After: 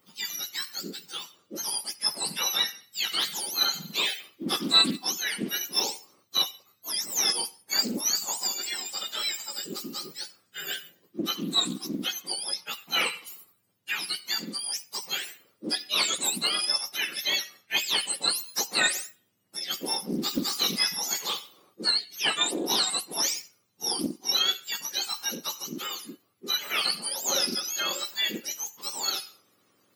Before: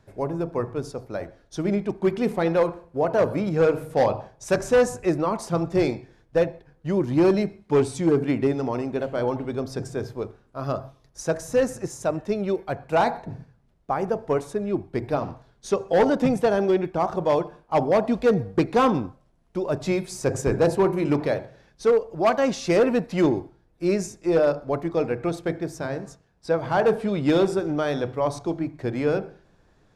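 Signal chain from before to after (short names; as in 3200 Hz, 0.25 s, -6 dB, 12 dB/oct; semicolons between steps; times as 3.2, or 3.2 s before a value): spectrum mirrored in octaves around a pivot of 1400 Hz; Doppler distortion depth 0.29 ms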